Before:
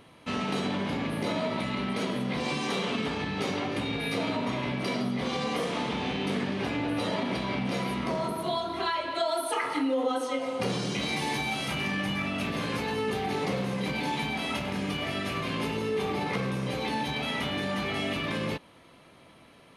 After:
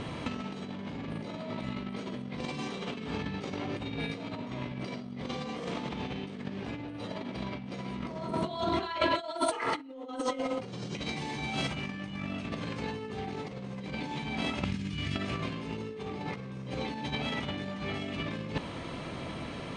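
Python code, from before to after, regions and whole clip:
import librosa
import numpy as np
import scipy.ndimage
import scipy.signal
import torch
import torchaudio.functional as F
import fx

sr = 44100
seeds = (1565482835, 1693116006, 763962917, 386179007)

y = fx.chain(x, sr, fx.tone_stack(knobs='6-0-2'),
    fx.over_compress(threshold_db=-51.0, ratio=-0.5), at=(14.64, 15.16))
y = scipy.signal.sosfilt(scipy.signal.butter(12, 8800.0, 'lowpass', fs=sr, output='sos'), y)
y = fx.low_shelf(y, sr, hz=290.0, db=7.5)
y = fx.over_compress(y, sr, threshold_db=-35.0, ratio=-0.5)
y = F.gain(torch.from_numpy(y), 2.5).numpy()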